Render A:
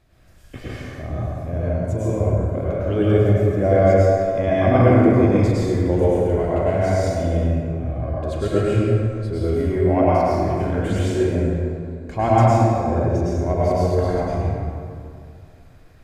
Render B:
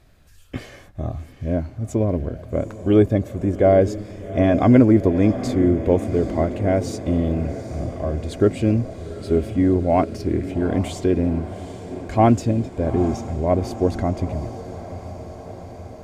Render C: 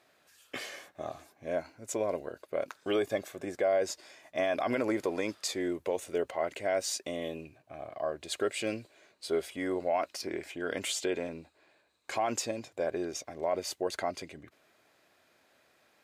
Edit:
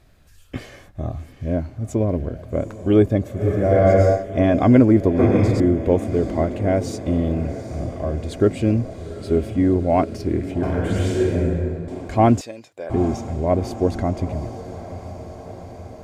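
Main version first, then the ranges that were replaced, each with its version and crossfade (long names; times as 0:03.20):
B
0:03.42–0:04.20: punch in from A, crossfade 0.16 s
0:05.19–0:05.60: punch in from A
0:10.63–0:11.88: punch in from A
0:12.41–0:12.90: punch in from C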